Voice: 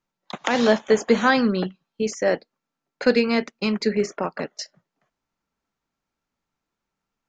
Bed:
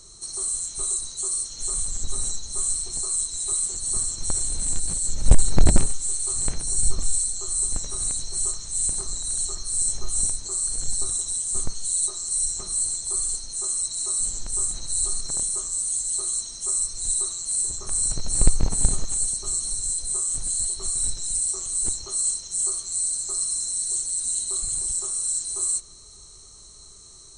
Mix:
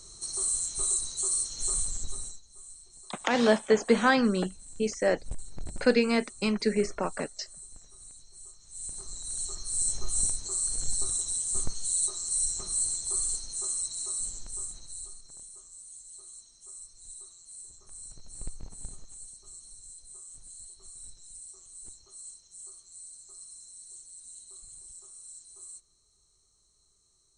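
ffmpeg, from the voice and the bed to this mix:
-filter_complex "[0:a]adelay=2800,volume=0.596[s0];[1:a]volume=7.08,afade=t=out:st=1.7:d=0.72:silence=0.0891251,afade=t=in:st=8.57:d=1.42:silence=0.112202,afade=t=out:st=13.37:d=1.82:silence=0.133352[s1];[s0][s1]amix=inputs=2:normalize=0"

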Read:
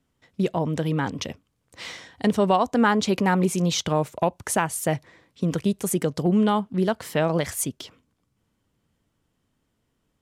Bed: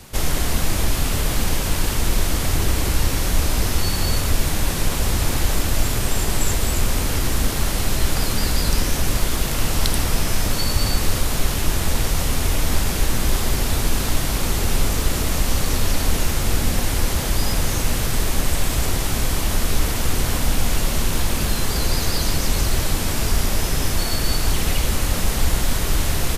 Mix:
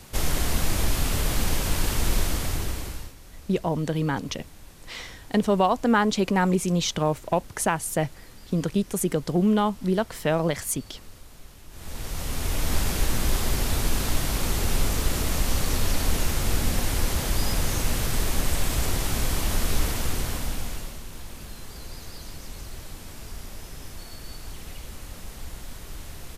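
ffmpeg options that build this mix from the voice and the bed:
-filter_complex "[0:a]adelay=3100,volume=0.891[s0];[1:a]volume=7.94,afade=t=out:st=2.16:d=0.98:silence=0.0749894,afade=t=in:st=11.7:d=1.1:silence=0.0794328,afade=t=out:st=19.8:d=1.2:silence=0.188365[s1];[s0][s1]amix=inputs=2:normalize=0"

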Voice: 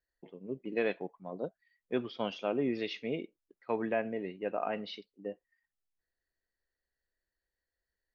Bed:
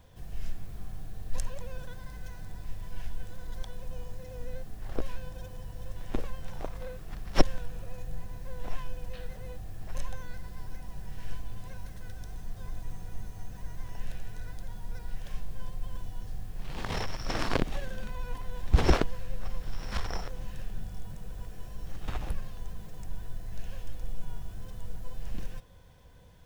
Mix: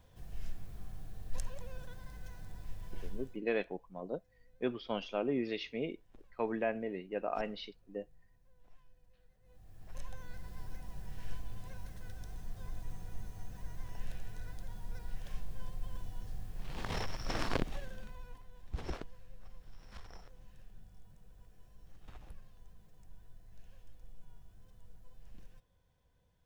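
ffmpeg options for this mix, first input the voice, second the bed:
-filter_complex "[0:a]adelay=2700,volume=0.794[s0];[1:a]volume=7.94,afade=t=out:st=3.1:d=0.31:silence=0.0749894,afade=t=in:st=9.42:d=1.13:silence=0.0630957,afade=t=out:st=17.39:d=1.08:silence=0.211349[s1];[s0][s1]amix=inputs=2:normalize=0"

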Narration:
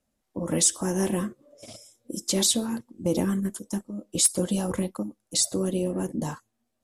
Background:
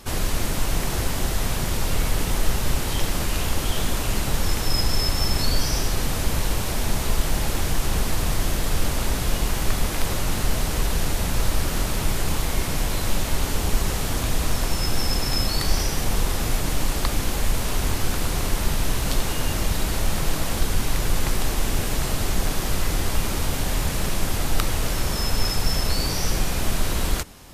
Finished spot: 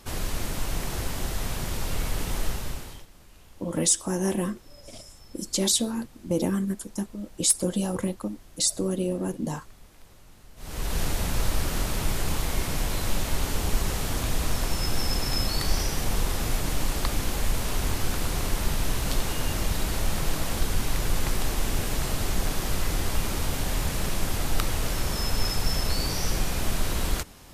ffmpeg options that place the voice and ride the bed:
-filter_complex "[0:a]adelay=3250,volume=0.944[s0];[1:a]volume=8.91,afade=t=out:st=2.42:d=0.64:silence=0.0749894,afade=t=in:st=10.56:d=0.44:silence=0.0562341[s1];[s0][s1]amix=inputs=2:normalize=0"

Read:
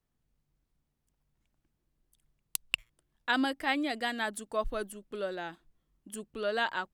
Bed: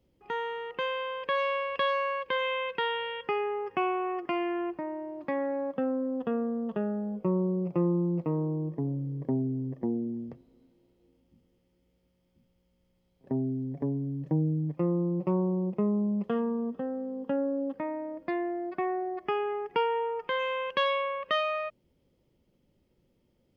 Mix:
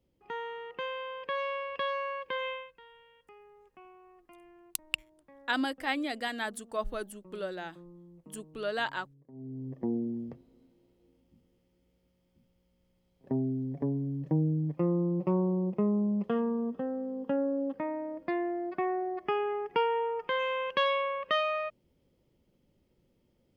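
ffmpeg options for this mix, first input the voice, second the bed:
-filter_complex "[0:a]adelay=2200,volume=0.841[s0];[1:a]volume=10,afade=t=out:st=2.48:d=0.23:silence=0.0944061,afade=t=in:st=9.32:d=0.63:silence=0.0562341[s1];[s0][s1]amix=inputs=2:normalize=0"

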